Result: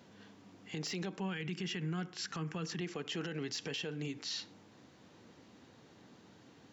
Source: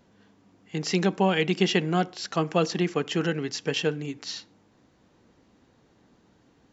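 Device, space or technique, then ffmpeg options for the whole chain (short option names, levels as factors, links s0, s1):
broadcast voice chain: -filter_complex "[0:a]asettb=1/sr,asplit=3[s0][s1][s2];[s0]atrim=end=1.204[s3];[s1]atrim=start=1.2:end=2.81,asetpts=PTS-STARTPTS,afade=t=in:d=0.004:c=qsin,afade=t=out:st=1.606:d=0.004:c=qsin,equalizer=f=160:t=o:w=0.67:g=6,equalizer=f=630:t=o:w=0.67:g=-10,equalizer=f=1600:t=o:w=0.67:g=4,equalizer=f=4000:t=o:w=0.67:g=-6[s4];[s2]atrim=start=2.806[s5];[s3][s4]acrossfade=d=0.004:c1=hsin:c2=qsin[s6];[s6][s5]acrossfade=d=0.004:c1=qsin:c2=hsin,highpass=f=84:w=0.5412,highpass=f=84:w=1.3066,deesser=0.7,acompressor=threshold=0.0158:ratio=3,equalizer=f=3700:t=o:w=2:g=4,alimiter=level_in=2.51:limit=0.0631:level=0:latency=1:release=45,volume=0.398,volume=1.19"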